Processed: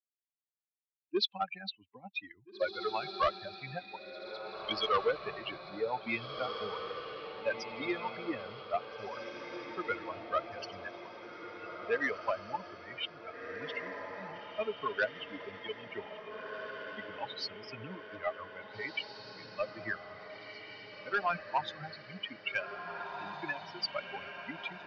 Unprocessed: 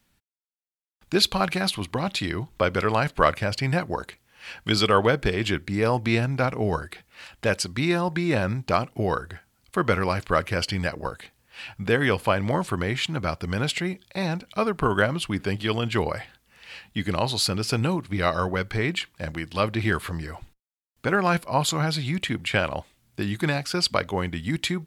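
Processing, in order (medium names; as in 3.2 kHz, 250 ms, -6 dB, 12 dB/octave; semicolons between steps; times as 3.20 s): expander on every frequency bin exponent 3; high-pass 96 Hz 24 dB/octave; three-band isolator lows -21 dB, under 320 Hz, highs -19 dB, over 4 kHz; saturation -22 dBFS, distortion -14 dB; steep low-pass 5.9 kHz 96 dB/octave; echo that smears into a reverb 1795 ms, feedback 55%, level -7 dB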